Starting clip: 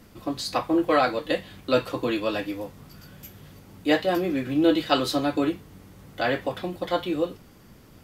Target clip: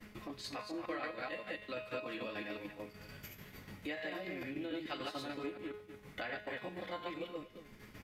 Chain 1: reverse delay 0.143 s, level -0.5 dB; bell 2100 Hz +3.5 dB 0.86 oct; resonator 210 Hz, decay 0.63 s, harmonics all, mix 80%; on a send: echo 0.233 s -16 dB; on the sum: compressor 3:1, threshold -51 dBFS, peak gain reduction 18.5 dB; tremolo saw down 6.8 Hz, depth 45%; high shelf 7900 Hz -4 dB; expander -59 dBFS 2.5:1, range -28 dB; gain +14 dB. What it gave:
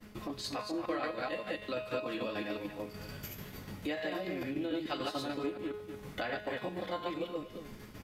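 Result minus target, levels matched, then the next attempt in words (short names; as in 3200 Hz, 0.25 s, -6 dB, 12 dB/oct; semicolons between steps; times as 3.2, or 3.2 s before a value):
compressor: peak gain reduction -6.5 dB; 2000 Hz band -3.0 dB
reverse delay 0.143 s, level -0.5 dB; bell 2100 Hz +10 dB 0.86 oct; resonator 210 Hz, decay 0.63 s, harmonics all, mix 80%; on a send: echo 0.233 s -16 dB; on the sum: compressor 3:1, threshold -59.5 dBFS, peak gain reduction 25 dB; tremolo saw down 6.8 Hz, depth 45%; high shelf 7900 Hz -4 dB; expander -59 dBFS 2.5:1, range -28 dB; gain +14 dB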